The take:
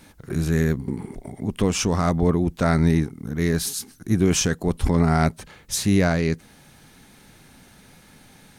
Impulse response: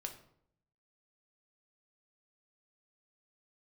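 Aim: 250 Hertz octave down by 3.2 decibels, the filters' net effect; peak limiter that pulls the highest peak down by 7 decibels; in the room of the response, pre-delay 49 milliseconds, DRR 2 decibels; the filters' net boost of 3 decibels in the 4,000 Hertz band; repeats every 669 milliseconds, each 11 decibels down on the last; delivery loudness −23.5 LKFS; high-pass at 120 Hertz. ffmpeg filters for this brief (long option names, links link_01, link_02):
-filter_complex "[0:a]highpass=120,equalizer=frequency=250:width_type=o:gain=-4,equalizer=frequency=4000:width_type=o:gain=4,alimiter=limit=-12dB:level=0:latency=1,aecho=1:1:669|1338|2007:0.282|0.0789|0.0221,asplit=2[link_01][link_02];[1:a]atrim=start_sample=2205,adelay=49[link_03];[link_02][link_03]afir=irnorm=-1:irlink=0,volume=0.5dB[link_04];[link_01][link_04]amix=inputs=2:normalize=0"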